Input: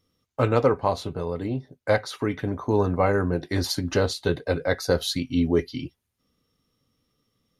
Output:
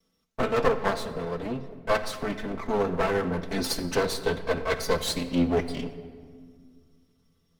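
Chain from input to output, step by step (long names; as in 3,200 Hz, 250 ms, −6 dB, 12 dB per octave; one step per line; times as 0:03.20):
lower of the sound and its delayed copy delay 4.5 ms
convolution reverb RT60 1.9 s, pre-delay 6 ms, DRR 9 dB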